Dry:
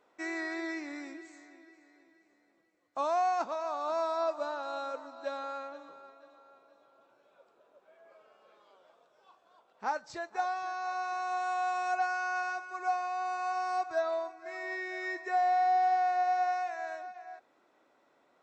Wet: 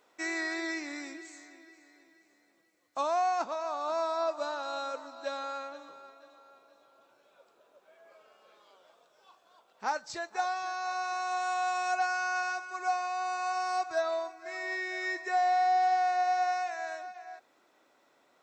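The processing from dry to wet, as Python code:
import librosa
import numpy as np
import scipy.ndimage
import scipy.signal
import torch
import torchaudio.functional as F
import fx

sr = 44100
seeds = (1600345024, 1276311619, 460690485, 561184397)

y = fx.high_shelf(x, sr, hz=2700.0, db=fx.steps((0.0, 11.0), (3.01, 4.5), (4.37, 9.5)))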